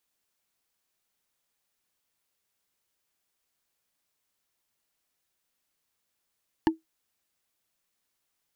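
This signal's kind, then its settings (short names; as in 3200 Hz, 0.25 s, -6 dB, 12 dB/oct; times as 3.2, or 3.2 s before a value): wood hit, lowest mode 322 Hz, decay 0.15 s, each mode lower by 4 dB, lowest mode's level -14.5 dB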